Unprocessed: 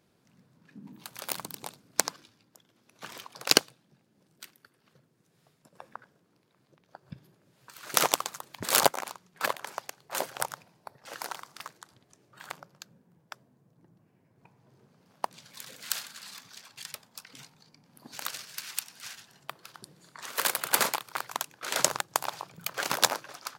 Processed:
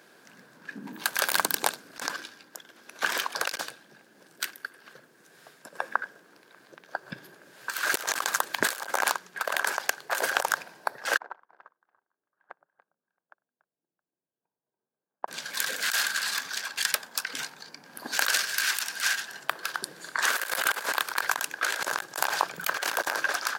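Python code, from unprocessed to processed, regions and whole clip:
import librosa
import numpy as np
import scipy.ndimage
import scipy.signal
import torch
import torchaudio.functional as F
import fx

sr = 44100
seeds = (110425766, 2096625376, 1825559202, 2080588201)

y = fx.chain(x, sr, fx.lowpass(hz=1000.0, slope=12),
    fx.echo_multitap(ms=(60, 98, 287, 315, 670), db=(-15.5, -19.0, -7.0, -17.5, -15.5)),
    fx.upward_expand(threshold_db=-56.0, expansion=2.5), at=(11.17, 15.28))
y = scipy.signal.sosfilt(scipy.signal.butter(2, 350.0, 'highpass', fs=sr, output='sos'), y)
y = fx.peak_eq(y, sr, hz=1600.0, db=12.0, octaves=0.26)
y = fx.over_compress(y, sr, threshold_db=-37.0, ratio=-1.0)
y = y * librosa.db_to_amplitude(8.0)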